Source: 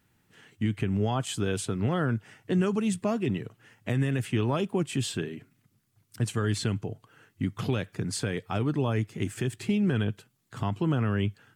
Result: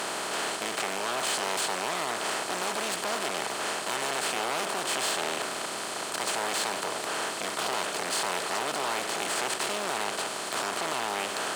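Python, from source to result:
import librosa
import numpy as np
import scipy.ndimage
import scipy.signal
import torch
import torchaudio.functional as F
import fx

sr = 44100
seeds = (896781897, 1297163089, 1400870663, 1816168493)

y = fx.bin_compress(x, sr, power=0.2)
y = np.clip(y, -10.0 ** (-21.5 / 20.0), 10.0 ** (-21.5 / 20.0))
y = scipy.signal.sosfilt(scipy.signal.butter(2, 650.0, 'highpass', fs=sr, output='sos'), y)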